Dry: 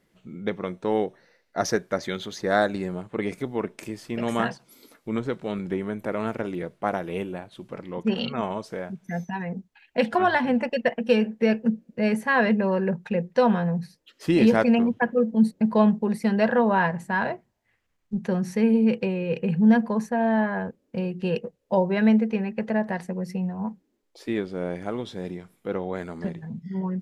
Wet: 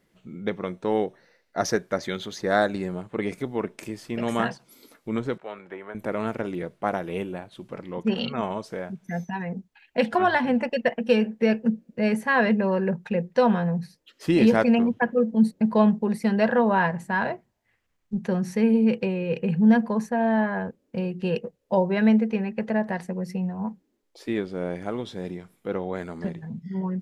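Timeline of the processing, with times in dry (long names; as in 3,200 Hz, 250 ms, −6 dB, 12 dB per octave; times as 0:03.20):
0:05.38–0:05.95: three-way crossover with the lows and the highs turned down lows −21 dB, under 500 Hz, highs −15 dB, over 2,600 Hz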